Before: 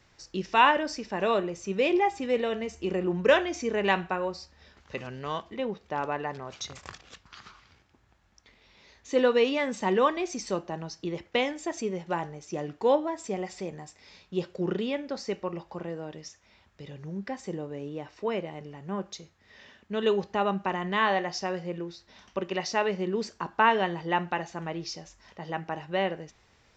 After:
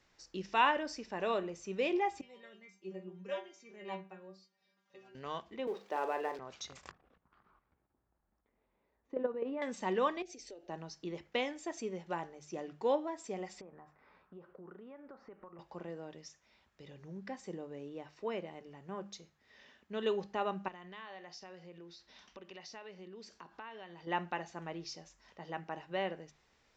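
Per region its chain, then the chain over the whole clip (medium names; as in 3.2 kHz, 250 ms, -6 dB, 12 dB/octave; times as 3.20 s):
2.21–5.15 s: high-pass 110 Hz 24 dB/octave + inharmonic resonator 190 Hz, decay 0.29 s, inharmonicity 0.002
5.67–6.39 s: companding laws mixed up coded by mu + resonant high-pass 390 Hz, resonance Q 1.6 + doubling 40 ms -8.5 dB
6.91–9.62 s: low-pass 1 kHz + level held to a coarse grid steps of 10 dB
10.22–10.69 s: treble shelf 7.4 kHz -10 dB + compression 12:1, threshold -35 dBFS + static phaser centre 460 Hz, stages 4
13.61–15.59 s: resonant low-pass 1.3 kHz, resonance Q 2.7 + compression, threshold -41 dBFS
20.68–24.07 s: low-pass 5.1 kHz + treble shelf 3.2 kHz +10 dB + compression 3:1, threshold -43 dBFS
whole clip: peaking EQ 100 Hz -9 dB 0.7 oct; hum notches 50/100/150/200 Hz; trim -8 dB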